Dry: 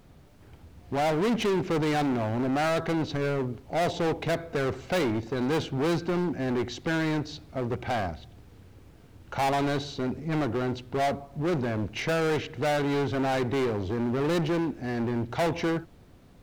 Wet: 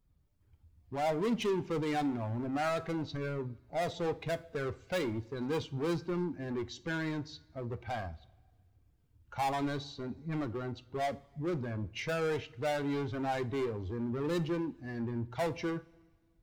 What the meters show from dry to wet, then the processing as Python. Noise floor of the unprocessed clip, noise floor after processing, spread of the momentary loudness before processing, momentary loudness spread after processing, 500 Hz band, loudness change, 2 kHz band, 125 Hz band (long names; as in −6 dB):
−53 dBFS, −69 dBFS, 5 LU, 8 LU, −7.0 dB, −7.5 dB, −8.0 dB, −7.0 dB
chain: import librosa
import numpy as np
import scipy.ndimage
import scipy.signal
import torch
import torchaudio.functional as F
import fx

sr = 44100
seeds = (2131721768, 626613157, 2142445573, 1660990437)

y = fx.bin_expand(x, sr, power=1.5)
y = fx.rev_double_slope(y, sr, seeds[0], early_s=0.3, late_s=1.6, knee_db=-18, drr_db=12.0)
y = y * librosa.db_to_amplitude(-4.5)